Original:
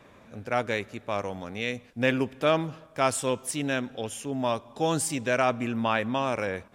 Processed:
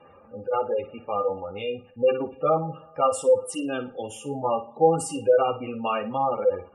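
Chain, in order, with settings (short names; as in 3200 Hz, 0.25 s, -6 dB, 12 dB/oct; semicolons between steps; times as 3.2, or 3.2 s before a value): small resonant body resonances 510/820/1200/2800 Hz, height 15 dB, ringing for 60 ms; dynamic EQ 1900 Hz, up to -7 dB, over -41 dBFS, Q 2.1; chorus voices 2, 0.56 Hz, delay 12 ms, depth 2 ms; spectral gate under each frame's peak -20 dB strong; on a send: flutter echo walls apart 9.6 m, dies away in 0.28 s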